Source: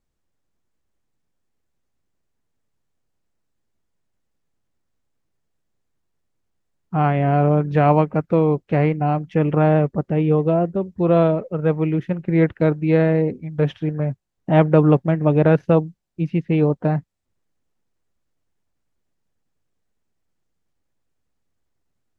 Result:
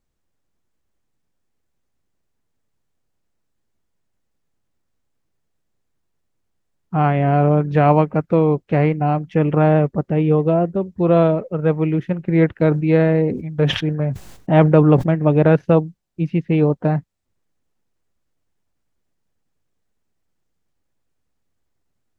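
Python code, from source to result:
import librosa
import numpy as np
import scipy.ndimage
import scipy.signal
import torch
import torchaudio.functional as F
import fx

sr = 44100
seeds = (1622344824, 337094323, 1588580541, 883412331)

y = fx.sustainer(x, sr, db_per_s=82.0, at=(12.55, 15.1))
y = y * librosa.db_to_amplitude(1.5)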